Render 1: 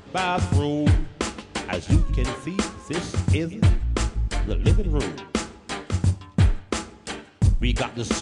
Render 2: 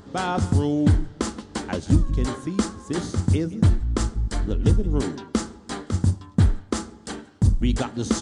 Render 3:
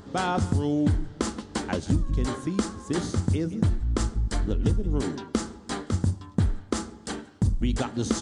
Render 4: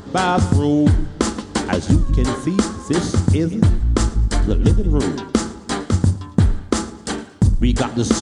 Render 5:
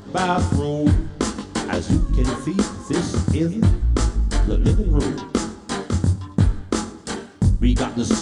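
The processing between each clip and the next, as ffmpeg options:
ffmpeg -i in.wav -af "equalizer=frequency=250:width_type=o:width=0.67:gain=5,equalizer=frequency=630:width_type=o:width=0.67:gain=-3,equalizer=frequency=2500:width_type=o:width=0.67:gain=-11" out.wav
ffmpeg -i in.wav -af "acompressor=threshold=-21dB:ratio=3" out.wav
ffmpeg -i in.wav -af "aecho=1:1:113|226|339:0.0841|0.0303|0.0109,volume=9dB" out.wav
ffmpeg -i in.wav -af "flanger=delay=19.5:depth=6.3:speed=0.77" out.wav

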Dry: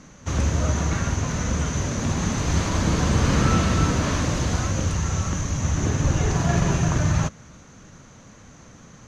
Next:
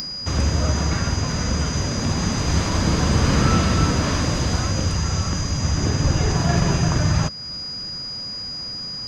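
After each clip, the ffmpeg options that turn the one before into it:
ffmpeg -i in.wav -filter_complex "[0:a]aeval=exprs='val(0)+0.02*sin(2*PI*4900*n/s)':channel_layout=same,asplit=2[link_01][link_02];[link_02]acompressor=mode=upward:threshold=-23dB:ratio=2.5,volume=1.5dB[link_03];[link_01][link_03]amix=inputs=2:normalize=0,volume=-5dB" out.wav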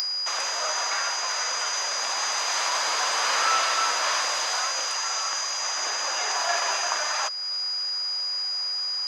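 ffmpeg -i in.wav -af "highpass=frequency=720:width=0.5412,highpass=frequency=720:width=1.3066,volume=2.5dB" out.wav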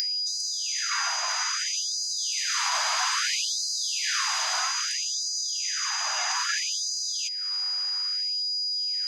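ffmpeg -i in.wav -af "asubboost=boost=6.5:cutoff=160,afftfilt=real='re*gte(b*sr/1024,570*pow(4000/570,0.5+0.5*sin(2*PI*0.61*pts/sr)))':imag='im*gte(b*sr/1024,570*pow(4000/570,0.5+0.5*sin(2*PI*0.61*pts/sr)))':win_size=1024:overlap=0.75" out.wav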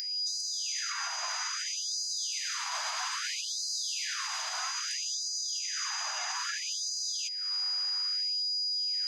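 ffmpeg -i in.wav -af "alimiter=limit=-21.5dB:level=0:latency=1:release=240,volume=-3dB" out.wav

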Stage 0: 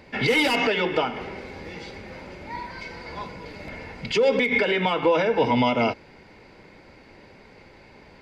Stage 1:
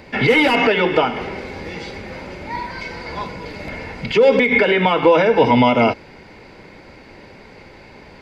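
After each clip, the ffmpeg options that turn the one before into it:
ffmpeg -i in.wav -filter_complex "[0:a]acrossover=split=3000[link_01][link_02];[link_02]acompressor=threshold=-41dB:ratio=4:attack=1:release=60[link_03];[link_01][link_03]amix=inputs=2:normalize=0,volume=7.5dB" out.wav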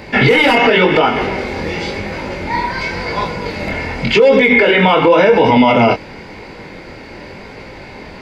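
ffmpeg -i in.wav -af "flanger=delay=18.5:depth=7.3:speed=0.92,alimiter=level_in=13dB:limit=-1dB:release=50:level=0:latency=1,volume=-1dB" out.wav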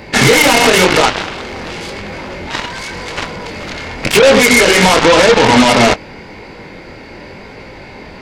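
ffmpeg -i in.wav -af "aeval=exprs='0.841*(cos(1*acos(clip(val(0)/0.841,-1,1)))-cos(1*PI/2))+0.106*(cos(3*acos(clip(val(0)/0.841,-1,1)))-cos(3*PI/2))+0.211*(cos(5*acos(clip(val(0)/0.841,-1,1)))-cos(5*PI/2))+0.335*(cos(7*acos(clip(val(0)/0.841,-1,1)))-cos(7*PI/2))':channel_layout=same,volume=1.5dB" out.wav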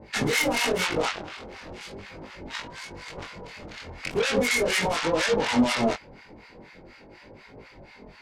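ffmpeg -i in.wav -filter_complex "[0:a]acrossover=split=930[link_01][link_02];[link_01]aeval=exprs='val(0)*(1-1/2+1/2*cos(2*PI*4.1*n/s))':channel_layout=same[link_03];[link_02]aeval=exprs='val(0)*(1-1/2-1/2*cos(2*PI*4.1*n/s))':channel_layout=same[link_04];[link_03][link_04]amix=inputs=2:normalize=0,flanger=delay=18.5:depth=4.8:speed=0.4,volume=-8.5dB" out.wav

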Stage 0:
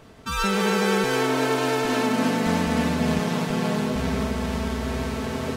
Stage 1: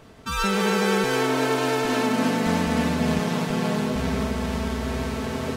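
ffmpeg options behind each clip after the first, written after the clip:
ffmpeg -i in.wav -af anull out.wav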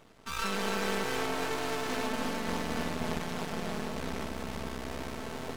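ffmpeg -i in.wav -af "aeval=exprs='max(val(0),0)':channel_layout=same,lowshelf=frequency=280:gain=-5,volume=-4.5dB" out.wav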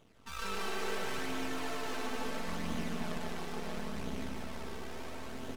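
ffmpeg -i in.wav -filter_complex "[0:a]flanger=delay=0.3:depth=2.3:regen=42:speed=0.73:shape=sinusoidal,asplit=2[link_01][link_02];[link_02]aecho=0:1:148.7|221.6:0.631|0.355[link_03];[link_01][link_03]amix=inputs=2:normalize=0,volume=-3dB" out.wav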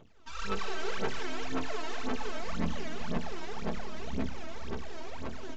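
ffmpeg -i in.wav -af "aphaser=in_gain=1:out_gain=1:delay=3.2:decay=0.75:speed=1.9:type=sinusoidal,aresample=16000,aresample=44100,volume=-3dB" out.wav

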